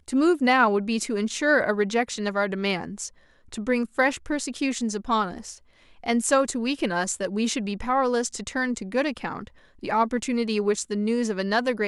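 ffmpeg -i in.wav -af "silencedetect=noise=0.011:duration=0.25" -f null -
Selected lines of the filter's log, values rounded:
silence_start: 3.09
silence_end: 3.52 | silence_duration: 0.44
silence_start: 5.57
silence_end: 6.04 | silence_duration: 0.47
silence_start: 9.48
silence_end: 9.83 | silence_duration: 0.35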